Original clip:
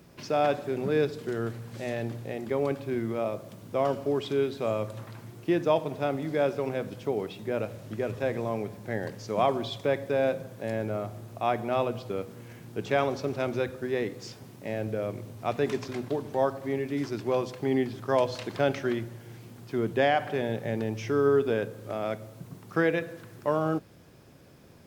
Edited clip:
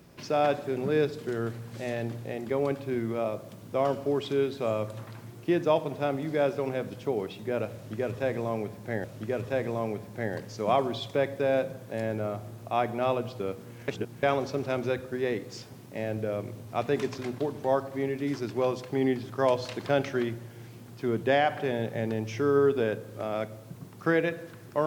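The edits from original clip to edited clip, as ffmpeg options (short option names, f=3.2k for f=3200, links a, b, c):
-filter_complex "[0:a]asplit=4[a][b][c][d];[a]atrim=end=9.042[e];[b]atrim=start=7.738:end=12.582[f];[c]atrim=start=12.578:end=12.932,asetpts=PTS-STARTPTS,areverse[g];[d]atrim=start=12.928[h];[e][f]acrossfade=d=0.004:c1=hsin:c2=hsin[i];[i][g]acrossfade=d=0.004:c1=hsin:c2=hsin[j];[j][h]acrossfade=d=0.004:c1=hsin:c2=hsin"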